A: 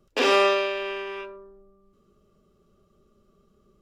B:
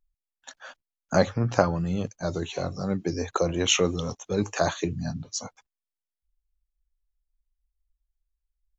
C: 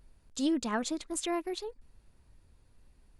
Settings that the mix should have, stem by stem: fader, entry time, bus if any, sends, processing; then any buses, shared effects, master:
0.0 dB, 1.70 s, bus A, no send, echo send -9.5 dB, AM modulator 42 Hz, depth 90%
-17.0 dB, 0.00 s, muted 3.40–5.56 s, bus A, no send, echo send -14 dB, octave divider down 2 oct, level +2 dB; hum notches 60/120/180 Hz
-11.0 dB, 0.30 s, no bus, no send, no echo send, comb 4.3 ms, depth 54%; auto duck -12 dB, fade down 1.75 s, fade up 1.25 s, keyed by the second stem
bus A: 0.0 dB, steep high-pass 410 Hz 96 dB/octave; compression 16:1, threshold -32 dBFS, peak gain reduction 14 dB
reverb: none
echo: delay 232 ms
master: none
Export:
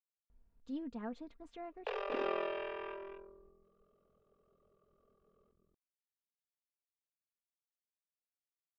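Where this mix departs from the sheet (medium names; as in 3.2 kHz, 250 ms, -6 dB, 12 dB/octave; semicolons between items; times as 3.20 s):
stem B: muted; master: extra tape spacing loss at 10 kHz 39 dB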